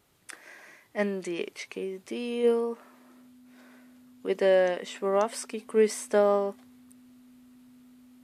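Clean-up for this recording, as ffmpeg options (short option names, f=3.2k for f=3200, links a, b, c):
-af "bandreject=f=250:w=30"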